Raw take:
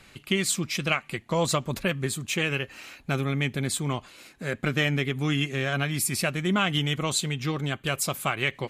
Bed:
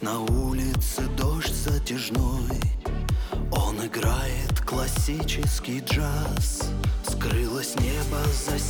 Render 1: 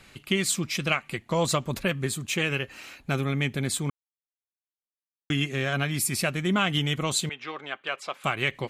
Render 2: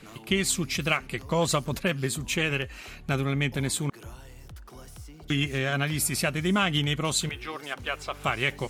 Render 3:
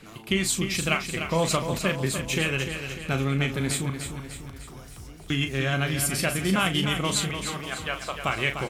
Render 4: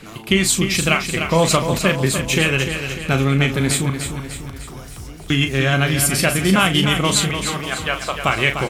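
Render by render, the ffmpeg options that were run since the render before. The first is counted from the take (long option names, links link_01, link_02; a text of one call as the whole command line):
ffmpeg -i in.wav -filter_complex "[0:a]asettb=1/sr,asplit=3[link_01][link_02][link_03];[link_01]atrim=end=7.294[link_04];[link_02]atrim=start=7.29:end=8.24,asetpts=PTS-STARTPTS,afade=type=in:duration=0.004:curve=qsin,afade=type=out:start_time=0.946:duration=0.004:curve=qsin,highpass=600,lowpass=2900[link_05];[link_03]atrim=start=8.236[link_06];[link_04][link_05]acrossfade=duration=0.004:curve1=hsin:curve2=qsin[link_07];[link_07][link_06]acrossfade=duration=0.004:curve1=qsin:curve2=hsin,asplit=3[link_08][link_09][link_10];[link_08]atrim=end=3.9,asetpts=PTS-STARTPTS,afade=type=out:start_time=3.896:duration=0.004:curve=hsin[link_11];[link_09]atrim=start=3.9:end=5.3,asetpts=PTS-STARTPTS,volume=0[link_12];[link_10]atrim=start=5.3,asetpts=PTS-STARTPTS,afade=type=in:duration=0.004:curve=hsin[link_13];[link_11][link_12][link_13]concat=n=3:v=0:a=1" out.wav
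ffmpeg -i in.wav -i bed.wav -filter_complex "[1:a]volume=-20dB[link_01];[0:a][link_01]amix=inputs=2:normalize=0" out.wav
ffmpeg -i in.wav -filter_complex "[0:a]asplit=2[link_01][link_02];[link_02]adelay=37,volume=-9dB[link_03];[link_01][link_03]amix=inputs=2:normalize=0,asplit=2[link_04][link_05];[link_05]aecho=0:1:299|598|897|1196|1495|1794:0.398|0.207|0.108|0.056|0.0291|0.0151[link_06];[link_04][link_06]amix=inputs=2:normalize=0" out.wav
ffmpeg -i in.wav -af "volume=8.5dB,alimiter=limit=-2dB:level=0:latency=1" out.wav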